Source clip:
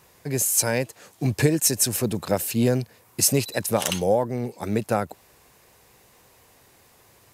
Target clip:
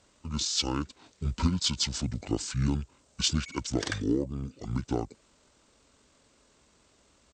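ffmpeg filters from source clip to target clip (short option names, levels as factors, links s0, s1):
-af "aeval=exprs='0.473*(cos(1*acos(clip(val(0)/0.473,-1,1)))-cos(1*PI/2))+0.00531*(cos(7*acos(clip(val(0)/0.473,-1,1)))-cos(7*PI/2))':c=same,asetrate=24750,aresample=44100,atempo=1.7818,volume=0.473"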